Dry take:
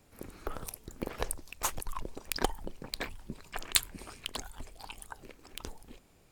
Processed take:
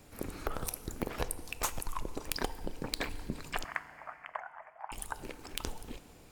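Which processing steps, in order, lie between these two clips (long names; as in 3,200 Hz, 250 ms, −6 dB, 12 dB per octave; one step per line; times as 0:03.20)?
0:03.64–0:04.92: elliptic band-pass filter 640–2,000 Hz, stop band 40 dB
downward compressor 6 to 1, threshold −37 dBFS, peak gain reduction 14.5 dB
feedback delay network reverb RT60 2.4 s, low-frequency decay 1×, high-frequency decay 0.7×, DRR 13.5 dB
level +6.5 dB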